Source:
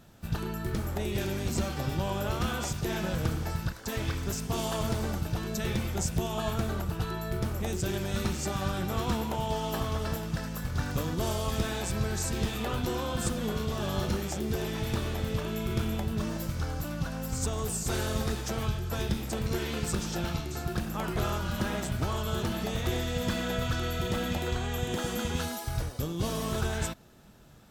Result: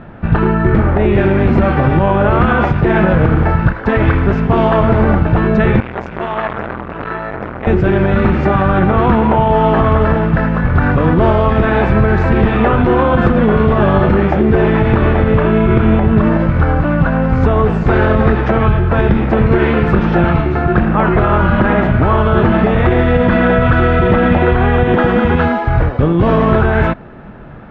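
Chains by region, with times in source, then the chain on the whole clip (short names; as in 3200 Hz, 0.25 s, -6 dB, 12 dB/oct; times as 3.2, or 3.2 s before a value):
5.8–7.67 low shelf 450 Hz -12 dB + core saturation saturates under 1900 Hz
whole clip: LPF 2100 Hz 24 dB/oct; bell 80 Hz -3 dB 1.8 oct; maximiser +24 dB; gain -1 dB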